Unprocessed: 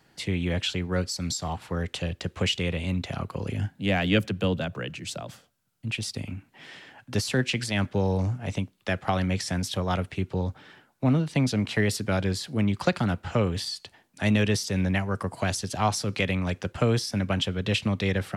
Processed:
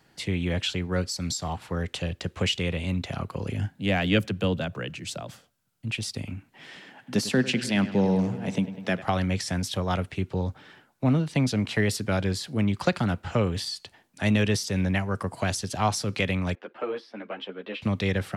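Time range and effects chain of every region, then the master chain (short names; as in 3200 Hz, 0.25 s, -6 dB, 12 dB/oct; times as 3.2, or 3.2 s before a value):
6.76–9.02 resonant high-pass 190 Hz, resonance Q 1.9 + dark delay 0.1 s, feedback 72%, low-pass 3500 Hz, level -14.5 dB
16.55–17.82 HPF 290 Hz 24 dB/oct + air absorption 400 m + ensemble effect
whole clip: dry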